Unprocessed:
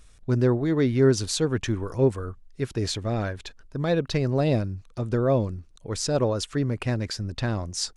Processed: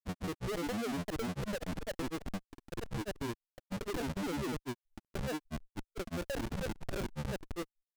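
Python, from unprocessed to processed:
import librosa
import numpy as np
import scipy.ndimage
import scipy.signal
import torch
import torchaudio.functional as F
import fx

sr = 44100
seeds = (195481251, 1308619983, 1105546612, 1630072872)

y = fx.vowel_filter(x, sr, vowel='u')
y = fx.schmitt(y, sr, flips_db=-38.5)
y = fx.granulator(y, sr, seeds[0], grain_ms=100.0, per_s=20.0, spray_ms=286.0, spread_st=12)
y = F.gain(torch.from_numpy(y), 2.0).numpy()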